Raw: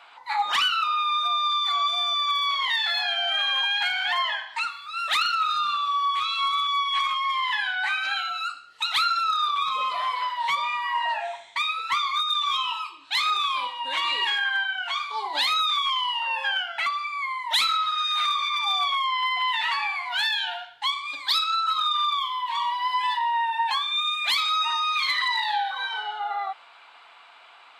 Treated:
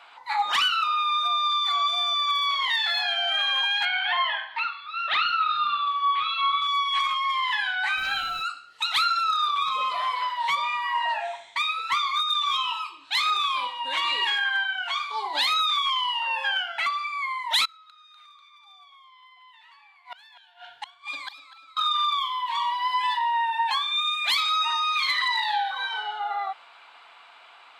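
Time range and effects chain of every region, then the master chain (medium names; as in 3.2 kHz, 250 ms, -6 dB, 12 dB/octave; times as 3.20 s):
3.85–6.62 s: low-pass 3.7 kHz 24 dB/octave + doubling 46 ms -9 dB
7.96–8.42 s: band-stop 2.2 kHz, Q 16 + added noise pink -50 dBFS
17.65–21.77 s: inverted gate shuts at -21 dBFS, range -28 dB + feedback delay 246 ms, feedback 47%, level -15 dB
whole clip: none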